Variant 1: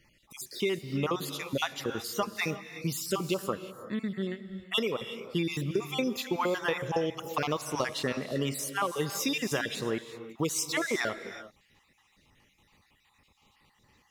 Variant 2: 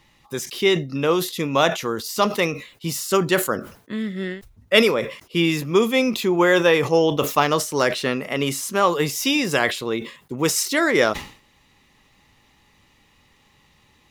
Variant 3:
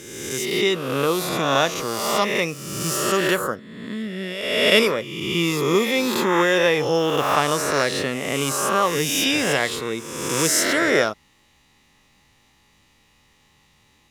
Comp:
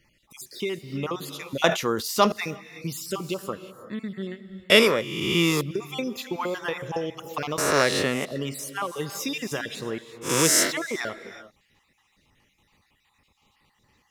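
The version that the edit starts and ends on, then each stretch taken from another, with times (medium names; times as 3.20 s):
1
1.64–2.32 s: from 2
4.70–5.61 s: from 3
7.58–8.25 s: from 3
10.26–10.68 s: from 3, crossfade 0.10 s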